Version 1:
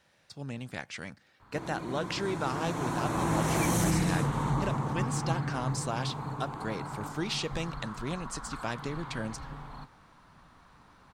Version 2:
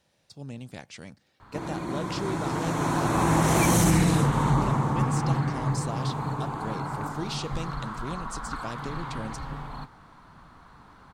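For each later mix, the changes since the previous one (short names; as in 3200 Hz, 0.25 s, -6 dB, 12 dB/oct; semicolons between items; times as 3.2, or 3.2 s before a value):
speech: add bell 1600 Hz -8.5 dB 1.5 oct; background +6.5 dB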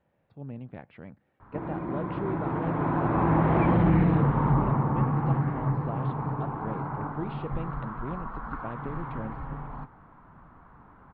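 master: add Gaussian blur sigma 4.3 samples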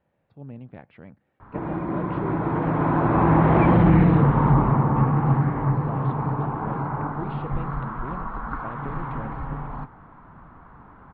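background +5.5 dB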